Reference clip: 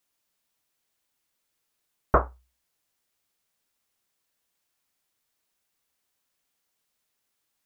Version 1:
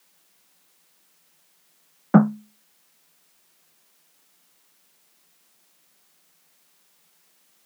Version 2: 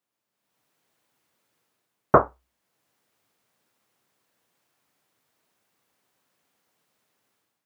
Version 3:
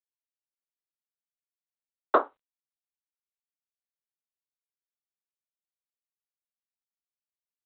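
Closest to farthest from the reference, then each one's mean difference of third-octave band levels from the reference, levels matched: 2, 3, 1; 1.0, 5.5, 8.0 dB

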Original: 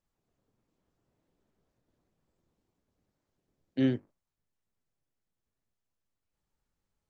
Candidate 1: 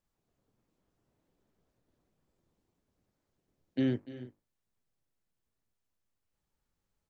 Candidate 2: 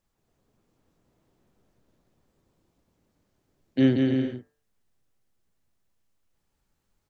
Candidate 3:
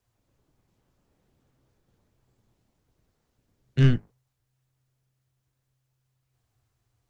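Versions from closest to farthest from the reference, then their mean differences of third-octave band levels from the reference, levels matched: 1, 2, 3; 1.0, 3.0, 4.0 dB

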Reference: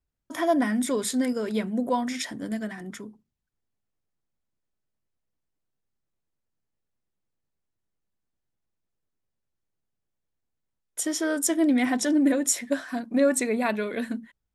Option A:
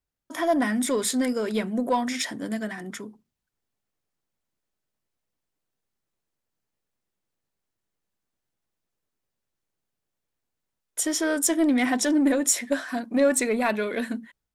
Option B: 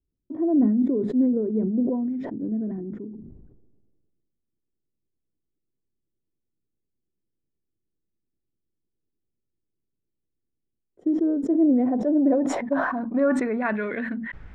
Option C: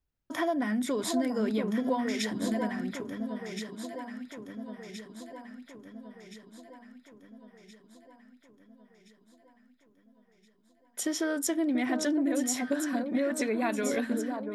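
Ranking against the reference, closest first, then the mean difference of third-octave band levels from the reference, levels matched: A, C, B; 2.0, 5.0, 10.0 dB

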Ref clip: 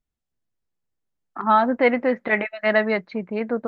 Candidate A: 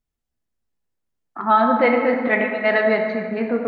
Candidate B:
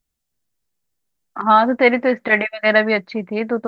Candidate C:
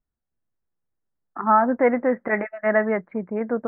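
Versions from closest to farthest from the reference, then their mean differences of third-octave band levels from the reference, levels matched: B, C, A; 1.0, 2.5, 4.5 dB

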